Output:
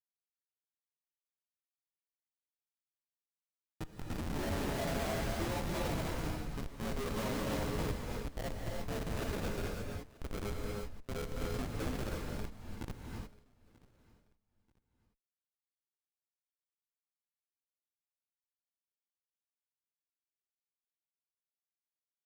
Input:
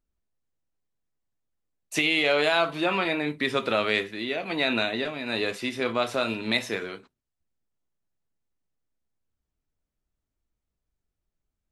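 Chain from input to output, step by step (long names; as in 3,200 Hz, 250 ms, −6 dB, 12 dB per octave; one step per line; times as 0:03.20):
every frequency bin delayed by itself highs late, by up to 692 ms
low-pass filter 1,200 Hz 12 dB per octave
low-pass that shuts in the quiet parts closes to 360 Hz, open at −25.5 dBFS
spectral tilt +4.5 dB per octave
mains-hum notches 60/120/180/240/300 Hz
sample-and-hold swept by an LFO 37×, swing 60% 0.22 Hz
phase-vocoder stretch with locked phases 1.9×
comparator with hysteresis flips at −29.5 dBFS
on a send: repeating echo 936 ms, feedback 30%, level −22.5 dB
on the sum: reverb whose tail is shaped and stops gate 370 ms rising, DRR −0.5 dB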